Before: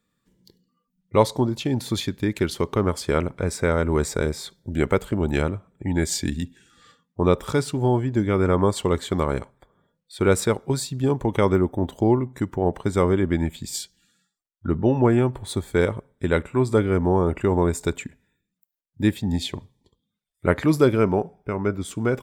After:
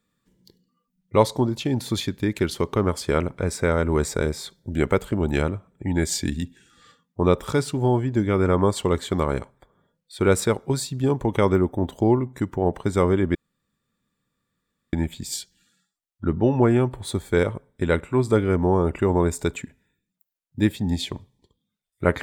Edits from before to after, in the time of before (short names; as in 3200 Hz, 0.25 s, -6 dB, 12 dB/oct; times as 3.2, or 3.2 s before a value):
13.35 insert room tone 1.58 s